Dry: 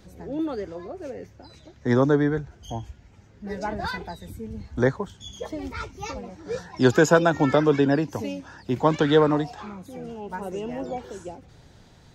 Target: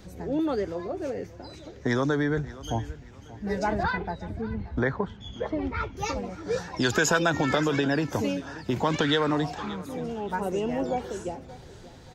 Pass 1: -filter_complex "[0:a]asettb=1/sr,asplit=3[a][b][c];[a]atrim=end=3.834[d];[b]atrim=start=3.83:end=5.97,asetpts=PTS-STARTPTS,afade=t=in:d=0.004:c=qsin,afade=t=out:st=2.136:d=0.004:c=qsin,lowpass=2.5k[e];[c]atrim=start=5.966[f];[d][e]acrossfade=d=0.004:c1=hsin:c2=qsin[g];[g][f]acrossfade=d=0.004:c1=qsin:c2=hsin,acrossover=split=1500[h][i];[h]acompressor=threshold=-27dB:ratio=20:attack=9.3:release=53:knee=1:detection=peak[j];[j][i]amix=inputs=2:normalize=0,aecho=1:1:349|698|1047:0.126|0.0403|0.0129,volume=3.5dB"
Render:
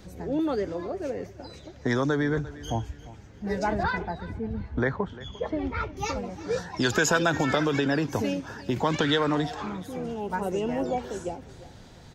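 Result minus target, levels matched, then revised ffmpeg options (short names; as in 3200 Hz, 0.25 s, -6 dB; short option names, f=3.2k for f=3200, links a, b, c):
echo 0.231 s early
-filter_complex "[0:a]asettb=1/sr,asplit=3[a][b][c];[a]atrim=end=3.834[d];[b]atrim=start=3.83:end=5.97,asetpts=PTS-STARTPTS,afade=t=in:d=0.004:c=qsin,afade=t=out:st=2.136:d=0.004:c=qsin,lowpass=2.5k[e];[c]atrim=start=5.966[f];[d][e]acrossfade=d=0.004:c1=hsin:c2=qsin[g];[g][f]acrossfade=d=0.004:c1=qsin:c2=hsin,acrossover=split=1500[h][i];[h]acompressor=threshold=-27dB:ratio=20:attack=9.3:release=53:knee=1:detection=peak[j];[j][i]amix=inputs=2:normalize=0,aecho=1:1:580|1160|1740:0.126|0.0403|0.0129,volume=3.5dB"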